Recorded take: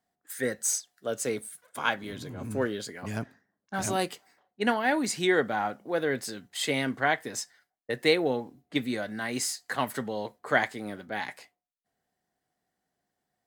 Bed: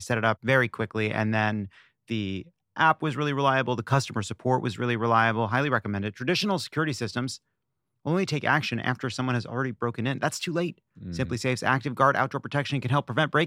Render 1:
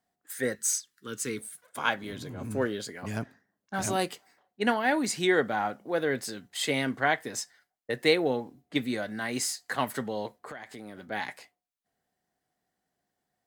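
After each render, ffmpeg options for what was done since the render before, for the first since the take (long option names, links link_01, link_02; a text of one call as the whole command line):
ffmpeg -i in.wav -filter_complex "[0:a]asettb=1/sr,asplit=3[link_01][link_02][link_03];[link_01]atrim=end=0.554[link_04];[link_02]atrim=start=0.55:end=1.39,asetpts=PTS-STARTPTS,afade=type=in:duration=0.004:curve=qsin,afade=type=out:start_time=0.836:duration=0.004:curve=qsin,asuperstop=centerf=650:order=4:qfactor=1[link_05];[link_03]atrim=start=1.386[link_06];[link_04][link_05]acrossfade=duration=0.004:curve1=hsin:curve2=qsin[link_07];[link_07][link_06]acrossfade=duration=0.004:curve1=qsin:curve2=hsin,asettb=1/sr,asplit=3[link_08][link_09][link_10];[link_08]atrim=end=10.394[link_11];[link_09]atrim=start=10.39:end=11.08,asetpts=PTS-STARTPTS,afade=type=in:duration=0.004:curve=qsin,afade=type=out:start_time=0.686:duration=0.004:curve=qsin,acompressor=threshold=-38dB:ratio=10:attack=3.2:release=140:knee=1:detection=peak[link_12];[link_10]atrim=start=11.076[link_13];[link_11][link_12]acrossfade=duration=0.004:curve1=hsin:curve2=qsin[link_14];[link_14][link_13]acrossfade=duration=0.004:curve1=qsin:curve2=hsin" out.wav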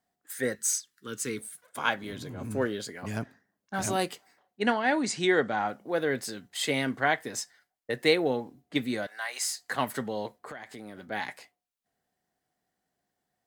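ffmpeg -i in.wav -filter_complex "[0:a]asettb=1/sr,asplit=3[link_01][link_02][link_03];[link_01]atrim=end=4.624[link_04];[link_02]atrim=start=4.62:end=5.68,asetpts=PTS-STARTPTS,afade=type=in:duration=0.004:curve=qsin,afade=type=out:start_time=1.056:duration=0.004:curve=qsin,lowpass=frequency=8500:width=0.5412,lowpass=frequency=8500:width=1.3066[link_05];[link_03]atrim=start=5.676[link_06];[link_04][link_05]acrossfade=duration=0.004:curve1=hsin:curve2=qsin[link_07];[link_07][link_06]acrossfade=duration=0.004:curve1=qsin:curve2=hsin,asettb=1/sr,asplit=3[link_08][link_09][link_10];[link_08]atrim=end=9.074[link_11];[link_09]atrim=start=9.07:end=9.55,asetpts=PTS-STARTPTS,afade=type=in:duration=0.004:curve=qsin,afade=type=out:start_time=0.476:duration=0.004:curve=qsin,highpass=frequency=670:width=0.5412,highpass=frequency=670:width=1.3066[link_12];[link_10]atrim=start=9.546[link_13];[link_11][link_12]acrossfade=duration=0.004:curve1=hsin:curve2=qsin[link_14];[link_14][link_13]acrossfade=duration=0.004:curve1=qsin:curve2=hsin" out.wav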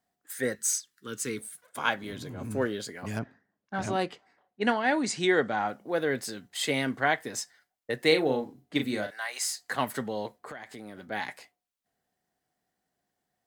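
ffmpeg -i in.wav -filter_complex "[0:a]asettb=1/sr,asplit=3[link_01][link_02][link_03];[link_01]atrim=end=3.194[link_04];[link_02]atrim=start=3.19:end=4.63,asetpts=PTS-STARTPTS,afade=type=in:duration=0.004:curve=qsin,afade=type=out:start_time=1.436:duration=0.004:curve=qsin,adynamicsmooth=sensitivity=1:basefreq=4000[link_05];[link_03]atrim=start=4.626[link_06];[link_04][link_05]acrossfade=duration=0.004:curve1=hsin:curve2=qsin[link_07];[link_07][link_06]acrossfade=duration=0.004:curve1=qsin:curve2=hsin,asettb=1/sr,asplit=3[link_08][link_09][link_10];[link_08]atrim=end=8.074[link_11];[link_09]atrim=start=8.07:end=9.15,asetpts=PTS-STARTPTS,afade=type=in:duration=0.004:curve=qsin,afade=type=out:start_time=1.076:duration=0.004:curve=qsin,asplit=2[link_12][link_13];[link_13]adelay=38,volume=-7dB[link_14];[link_12][link_14]amix=inputs=2:normalize=0,atrim=end_sample=47628[link_15];[link_10]atrim=start=9.146[link_16];[link_11][link_15]acrossfade=duration=0.004:curve1=hsin:curve2=qsin[link_17];[link_17][link_16]acrossfade=duration=0.004:curve1=qsin:curve2=hsin" out.wav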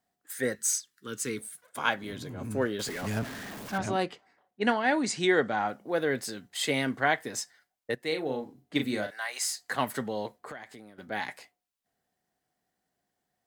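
ffmpeg -i in.wav -filter_complex "[0:a]asettb=1/sr,asplit=3[link_01][link_02][link_03];[link_01]atrim=end=2.794[link_04];[link_02]atrim=start=2.79:end=3.78,asetpts=PTS-STARTPTS,afade=type=in:duration=0.004:curve=qsin,afade=type=out:start_time=0.986:duration=0.004:curve=qsin,aeval=exprs='val(0)+0.5*0.0188*sgn(val(0))':channel_layout=same[link_05];[link_03]atrim=start=3.776[link_06];[link_04][link_05]acrossfade=duration=0.004:curve1=hsin:curve2=qsin[link_07];[link_07][link_06]acrossfade=duration=0.004:curve1=qsin:curve2=hsin,asplit=3[link_08][link_09][link_10];[link_08]atrim=end=7.95,asetpts=PTS-STARTPTS,afade=type=out:start_time=7.946:duration=0.004:curve=hsin:silence=0.223872[link_11];[link_09]atrim=start=7.95:end=10.98,asetpts=PTS-STARTPTS,afade=type=in:duration=0.85:silence=0.223872,afade=type=out:start_time=2.59:duration=0.44:silence=0.251189[link_12];[link_10]atrim=start=10.98,asetpts=PTS-STARTPTS,afade=type=in:duration=0.004:curve=hsin:silence=0.251189[link_13];[link_11][link_12][link_13]concat=n=3:v=0:a=1" out.wav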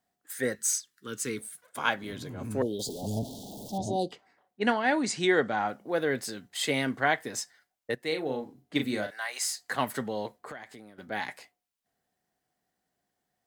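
ffmpeg -i in.wav -filter_complex "[0:a]asettb=1/sr,asplit=3[link_01][link_02][link_03];[link_01]atrim=end=2.624[link_04];[link_02]atrim=start=2.62:end=4.12,asetpts=PTS-STARTPTS,afade=type=in:duration=0.004:curve=qsin,afade=type=out:start_time=1.496:duration=0.004:curve=qsin,asuperstop=centerf=1700:order=12:qfactor=0.67[link_05];[link_03]atrim=start=4.116[link_06];[link_04][link_05]acrossfade=duration=0.004:curve1=hsin:curve2=qsin[link_07];[link_07][link_06]acrossfade=duration=0.004:curve1=qsin:curve2=hsin" out.wav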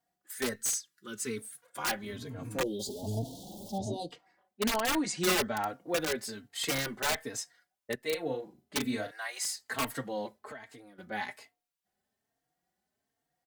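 ffmpeg -i in.wav -filter_complex "[0:a]aeval=exprs='(mod(8.41*val(0)+1,2)-1)/8.41':channel_layout=same,asplit=2[link_01][link_02];[link_02]adelay=3.8,afreqshift=1.2[link_03];[link_01][link_03]amix=inputs=2:normalize=1" out.wav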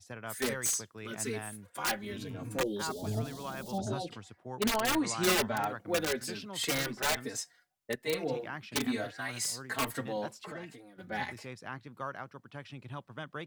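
ffmpeg -i in.wav -i bed.wav -filter_complex "[1:a]volume=-18.5dB[link_01];[0:a][link_01]amix=inputs=2:normalize=0" out.wav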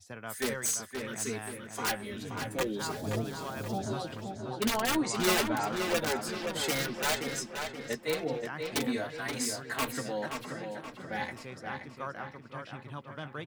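ffmpeg -i in.wav -filter_complex "[0:a]asplit=2[link_01][link_02];[link_02]adelay=13,volume=-14dB[link_03];[link_01][link_03]amix=inputs=2:normalize=0,asplit=2[link_04][link_05];[link_05]adelay=526,lowpass=frequency=4300:poles=1,volume=-5.5dB,asplit=2[link_06][link_07];[link_07]adelay=526,lowpass=frequency=4300:poles=1,volume=0.48,asplit=2[link_08][link_09];[link_09]adelay=526,lowpass=frequency=4300:poles=1,volume=0.48,asplit=2[link_10][link_11];[link_11]adelay=526,lowpass=frequency=4300:poles=1,volume=0.48,asplit=2[link_12][link_13];[link_13]adelay=526,lowpass=frequency=4300:poles=1,volume=0.48,asplit=2[link_14][link_15];[link_15]adelay=526,lowpass=frequency=4300:poles=1,volume=0.48[link_16];[link_04][link_06][link_08][link_10][link_12][link_14][link_16]amix=inputs=7:normalize=0" out.wav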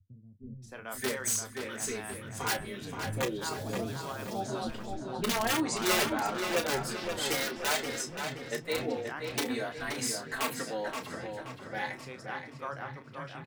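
ffmpeg -i in.wav -filter_complex "[0:a]asplit=2[link_01][link_02];[link_02]adelay=31,volume=-9.5dB[link_03];[link_01][link_03]amix=inputs=2:normalize=0,acrossover=split=210[link_04][link_05];[link_05]adelay=620[link_06];[link_04][link_06]amix=inputs=2:normalize=0" out.wav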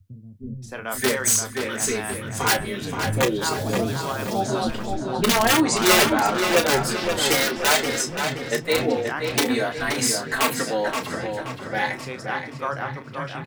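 ffmpeg -i in.wav -af "volume=11dB" out.wav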